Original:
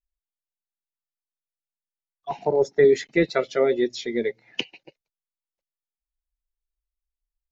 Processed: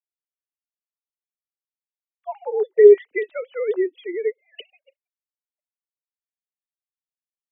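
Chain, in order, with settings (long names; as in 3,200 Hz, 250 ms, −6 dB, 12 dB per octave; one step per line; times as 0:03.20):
three sine waves on the formant tracks
level +3.5 dB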